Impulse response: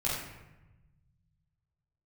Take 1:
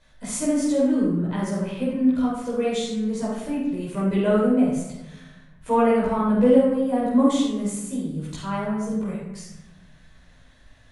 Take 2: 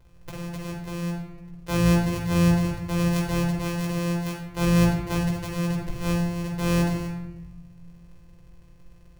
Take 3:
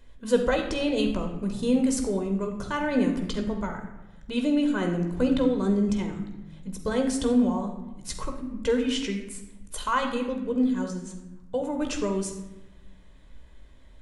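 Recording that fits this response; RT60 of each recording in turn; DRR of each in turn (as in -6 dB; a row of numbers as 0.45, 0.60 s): 1; 1.0, 1.0, 1.1 s; -8.0, -2.0, 3.5 dB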